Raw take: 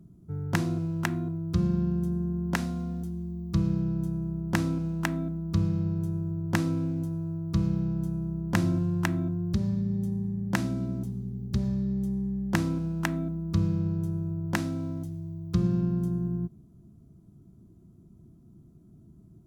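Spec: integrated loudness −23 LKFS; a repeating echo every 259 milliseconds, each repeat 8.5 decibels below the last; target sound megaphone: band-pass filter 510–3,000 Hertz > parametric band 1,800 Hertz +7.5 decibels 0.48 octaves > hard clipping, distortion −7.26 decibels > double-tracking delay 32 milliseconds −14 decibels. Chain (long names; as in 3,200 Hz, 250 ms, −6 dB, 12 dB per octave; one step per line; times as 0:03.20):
band-pass filter 510–3,000 Hz
parametric band 1,800 Hz +7.5 dB 0.48 octaves
repeating echo 259 ms, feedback 38%, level −8.5 dB
hard clipping −20 dBFS
double-tracking delay 32 ms −14 dB
level +17 dB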